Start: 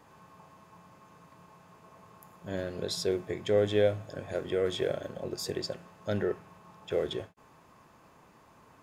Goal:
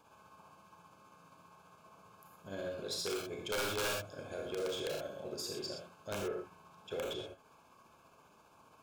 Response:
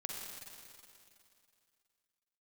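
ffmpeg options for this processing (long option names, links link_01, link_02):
-filter_complex "[0:a]tremolo=f=15:d=0.48,aeval=exprs='(mod(10.6*val(0)+1,2)-1)/10.6':channel_layout=same,asuperstop=centerf=1900:order=20:qfactor=4.8,lowshelf=frequency=490:gain=-6.5[link_01];[1:a]atrim=start_sample=2205,afade=type=out:start_time=0.25:duration=0.01,atrim=end_sample=11466,asetrate=66150,aresample=44100[link_02];[link_01][link_02]afir=irnorm=-1:irlink=0,asoftclip=type=tanh:threshold=-36dB,volume=5dB"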